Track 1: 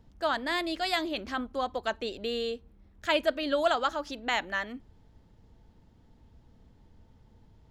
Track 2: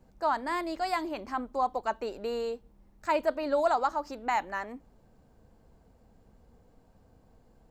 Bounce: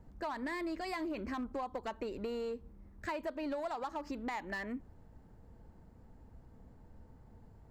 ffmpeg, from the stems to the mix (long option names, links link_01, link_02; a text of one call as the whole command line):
ffmpeg -i stem1.wav -i stem2.wav -filter_complex "[0:a]lowpass=frequency=1900:width=0.5412,lowpass=frequency=1900:width=1.3066,asoftclip=type=hard:threshold=-29.5dB,volume=0.5dB[link_01];[1:a]volume=-5.5dB,asplit=2[link_02][link_03];[link_03]apad=whole_len=339970[link_04];[link_01][link_04]sidechaincompress=threshold=-40dB:ratio=4:attack=16:release=122[link_05];[link_05][link_02]amix=inputs=2:normalize=0,acompressor=threshold=-35dB:ratio=6" out.wav